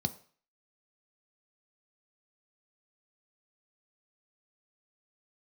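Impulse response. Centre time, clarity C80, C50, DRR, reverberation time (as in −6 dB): 5 ms, 20.5 dB, 17.0 dB, 8.5 dB, 0.45 s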